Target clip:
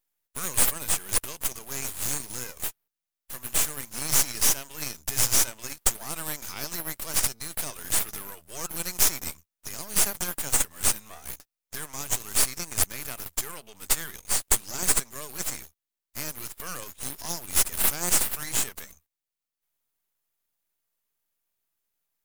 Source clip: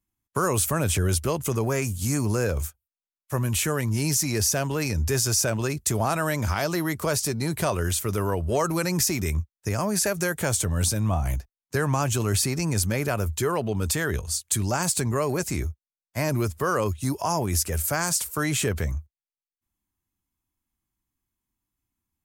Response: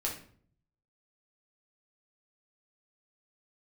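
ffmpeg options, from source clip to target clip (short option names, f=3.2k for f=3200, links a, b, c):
-af "aderivative,aeval=exprs='max(val(0),0)':c=same,volume=7dB"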